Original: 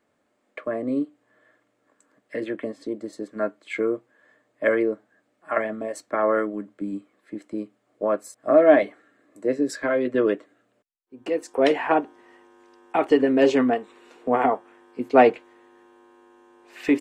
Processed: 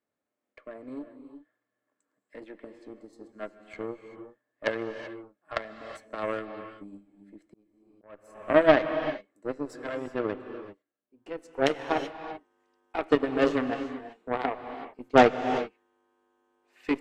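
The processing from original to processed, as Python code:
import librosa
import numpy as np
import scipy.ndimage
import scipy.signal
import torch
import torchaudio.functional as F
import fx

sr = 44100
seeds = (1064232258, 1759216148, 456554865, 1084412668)

y = fx.cheby_harmonics(x, sr, harmonics=(2, 7, 8), levels_db=(-9, -19, -26), full_scale_db=-1.5)
y = fx.rev_gated(y, sr, seeds[0], gate_ms=410, shape='rising', drr_db=9.0)
y = fx.auto_swell(y, sr, attack_ms=524.0, at=(7.47, 8.35))
y = y * 10.0 ** (-3.5 / 20.0)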